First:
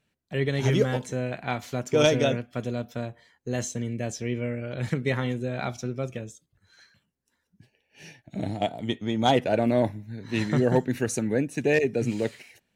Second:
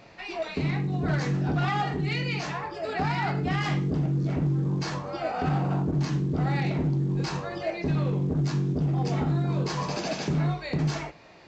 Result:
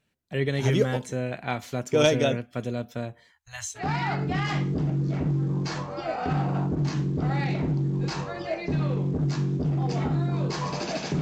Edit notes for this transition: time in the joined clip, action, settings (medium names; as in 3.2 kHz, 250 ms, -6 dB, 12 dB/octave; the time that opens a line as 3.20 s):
first
3.32–3.88 s: inverse Chebyshev band-stop 170–460 Hz, stop band 50 dB
3.81 s: go over to second from 2.97 s, crossfade 0.14 s